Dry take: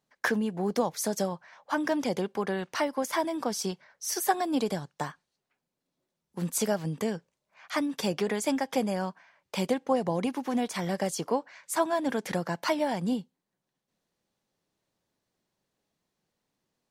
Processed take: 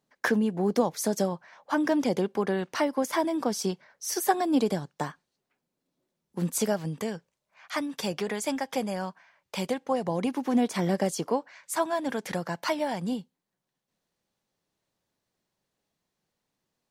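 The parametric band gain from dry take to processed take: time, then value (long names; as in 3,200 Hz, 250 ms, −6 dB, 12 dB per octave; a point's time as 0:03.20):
parametric band 290 Hz 1.9 octaves
0:06.46 +4.5 dB
0:07.07 −3 dB
0:09.91 −3 dB
0:10.80 +8.5 dB
0:11.58 −2 dB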